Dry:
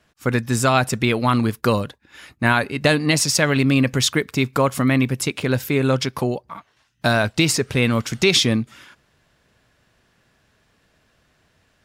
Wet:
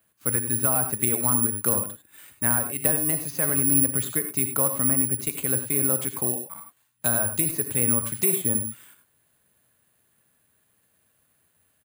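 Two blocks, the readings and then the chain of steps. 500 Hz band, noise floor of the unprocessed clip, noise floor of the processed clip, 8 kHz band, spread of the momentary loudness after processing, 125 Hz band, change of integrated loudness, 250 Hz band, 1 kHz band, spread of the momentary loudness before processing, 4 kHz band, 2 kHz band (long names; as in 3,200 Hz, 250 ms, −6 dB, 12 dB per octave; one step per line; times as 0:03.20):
−10.5 dB, −63 dBFS, −68 dBFS, +5.0 dB, 6 LU, −10.5 dB, −2.5 dB, −10.0 dB, −11.5 dB, 7 LU, −21.5 dB, −14.0 dB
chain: high-pass filter 70 Hz 24 dB per octave
treble cut that deepens with the level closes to 1,300 Hz, closed at −13 dBFS
downsampling to 11,025 Hz
reverb whose tail is shaped and stops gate 120 ms rising, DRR 7.5 dB
bad sample-rate conversion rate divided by 4×, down none, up zero stuff
level −11 dB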